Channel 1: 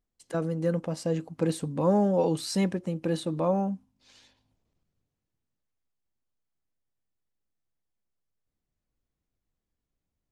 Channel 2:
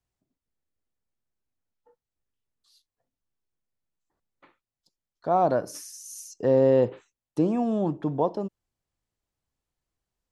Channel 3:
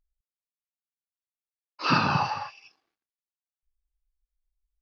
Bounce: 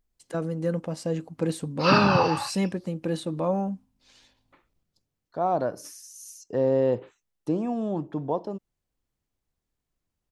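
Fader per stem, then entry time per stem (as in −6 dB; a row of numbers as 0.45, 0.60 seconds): 0.0, −3.0, +2.0 decibels; 0.00, 0.10, 0.00 seconds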